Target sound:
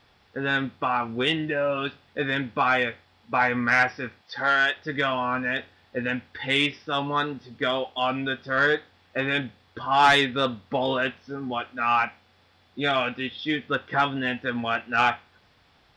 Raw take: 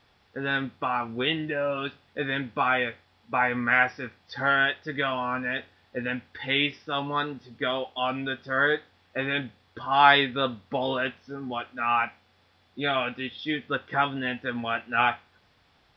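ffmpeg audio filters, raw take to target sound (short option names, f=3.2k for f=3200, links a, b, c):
-filter_complex "[0:a]asoftclip=type=tanh:threshold=-13.5dB,asettb=1/sr,asplit=3[a][b][c];[a]atrim=end=4.214[d];[b]atrim=start=4.21:end=4.77,asetpts=PTS-STARTPTS,afade=t=in:d=0.004:c=qsin,afade=t=out:st=0.556:d=0.004:c=qsin,highpass=f=420:p=1[e];[c]atrim=start=4.766[f];[d][e]acrossfade=d=0.004:c1=hsin:c2=qsin[g];[g][f]acrossfade=d=0.004:c1=qsin:c2=hsin,volume=3dB"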